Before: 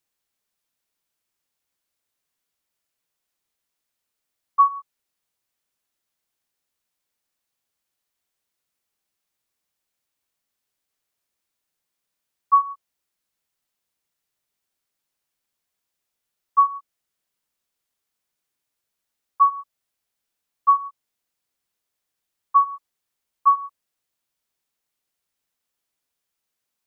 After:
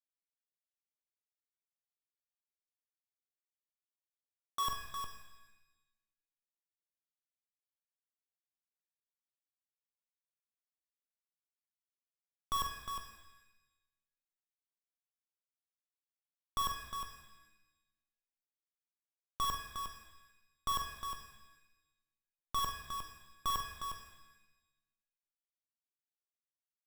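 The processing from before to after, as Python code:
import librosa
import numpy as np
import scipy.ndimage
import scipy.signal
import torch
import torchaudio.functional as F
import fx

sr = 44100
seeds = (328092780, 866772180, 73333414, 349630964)

p1 = fx.peak_eq(x, sr, hz=1000.0, db=-2.5, octaves=0.5)
p2 = fx.schmitt(p1, sr, flips_db=-28.5)
p3 = p2 + fx.echo_multitap(p2, sr, ms=(45, 358), db=(-8.0, -7.0), dry=0)
p4 = fx.rev_shimmer(p3, sr, seeds[0], rt60_s=1.0, semitones=7, shimmer_db=-8, drr_db=5.5)
y = p4 * 10.0 ** (-1.0 / 20.0)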